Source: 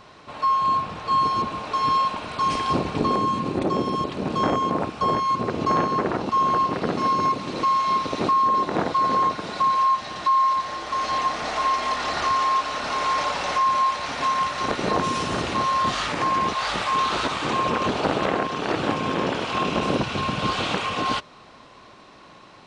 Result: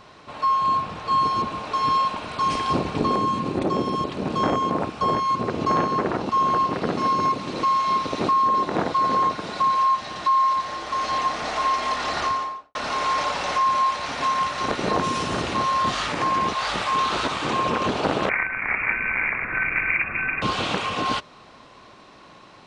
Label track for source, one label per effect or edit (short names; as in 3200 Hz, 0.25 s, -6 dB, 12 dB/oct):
12.180000	12.750000	studio fade out
18.290000	20.420000	inverted band carrier 2600 Hz